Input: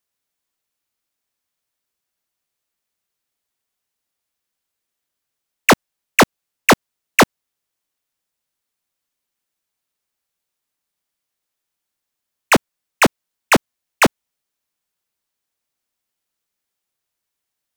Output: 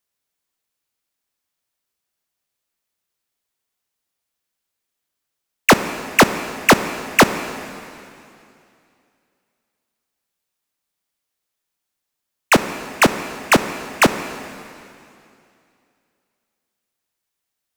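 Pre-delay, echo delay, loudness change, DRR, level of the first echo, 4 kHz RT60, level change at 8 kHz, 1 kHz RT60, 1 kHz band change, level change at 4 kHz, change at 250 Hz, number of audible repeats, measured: 19 ms, no echo, 0.0 dB, 10.0 dB, no echo, 2.6 s, +0.5 dB, 2.6 s, +0.5 dB, +0.5 dB, +0.5 dB, no echo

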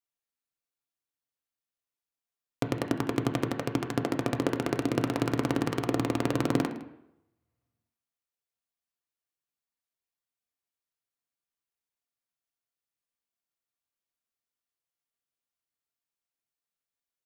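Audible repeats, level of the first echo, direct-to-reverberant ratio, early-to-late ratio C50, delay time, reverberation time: 1, -18.0 dB, 4.0 dB, 10.0 dB, 159 ms, 0.80 s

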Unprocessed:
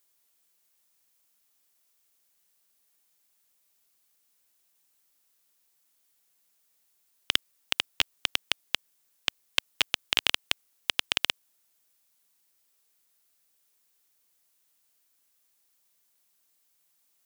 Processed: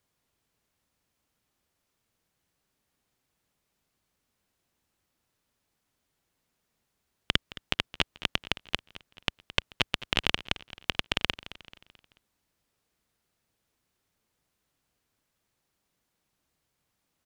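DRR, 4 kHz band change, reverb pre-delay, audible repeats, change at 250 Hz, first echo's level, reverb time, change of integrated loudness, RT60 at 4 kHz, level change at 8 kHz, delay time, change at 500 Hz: no reverb, -2.5 dB, no reverb, 3, +9.5 dB, -17.0 dB, no reverb, -2.0 dB, no reverb, -8.0 dB, 218 ms, +5.0 dB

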